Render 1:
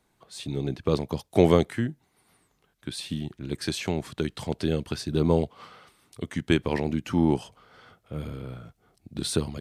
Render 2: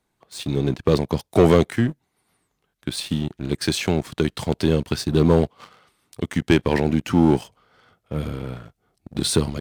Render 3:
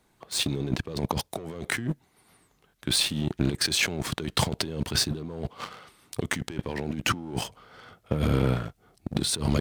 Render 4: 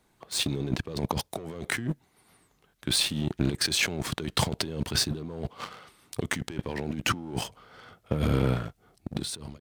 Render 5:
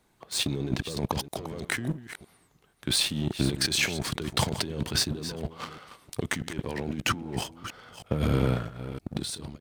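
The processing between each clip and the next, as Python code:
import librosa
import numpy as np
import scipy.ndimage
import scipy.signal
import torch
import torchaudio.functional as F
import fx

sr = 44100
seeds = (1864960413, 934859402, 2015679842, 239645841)

y1 = fx.leveller(x, sr, passes=2)
y2 = fx.over_compress(y1, sr, threshold_db=-29.0, ratio=-1.0)
y3 = fx.fade_out_tail(y2, sr, length_s=0.66)
y3 = y3 * librosa.db_to_amplitude(-1.0)
y4 = fx.reverse_delay(y3, sr, ms=321, wet_db=-12.0)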